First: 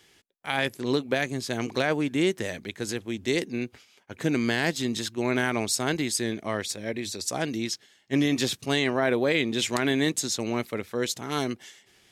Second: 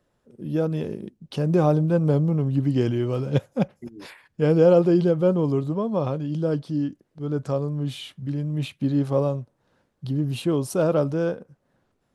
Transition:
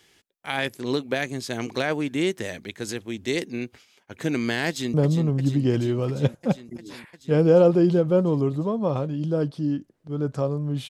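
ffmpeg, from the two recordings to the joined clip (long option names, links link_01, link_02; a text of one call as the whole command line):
ffmpeg -i cue0.wav -i cue1.wav -filter_complex "[0:a]apad=whole_dur=10.89,atrim=end=10.89,atrim=end=4.942[link_01];[1:a]atrim=start=2.048:end=8[link_02];[link_01][link_02]acrossfade=duration=0.004:curve1=hsin:curve2=hsin,asplit=2[link_03][link_04];[link_04]afade=type=in:start_time=4.68:duration=0.01,afade=type=out:start_time=4.94:duration=0.01,aecho=0:1:350|700|1050|1400|1750|2100|2450|2800|3150|3500|3850|4200:0.375837|0.30067|0.240536|0.192429|0.153943|0.123154|0.0985235|0.0788188|0.0630551|0.050444|0.0403552|0.0322842[link_05];[link_03][link_05]amix=inputs=2:normalize=0" out.wav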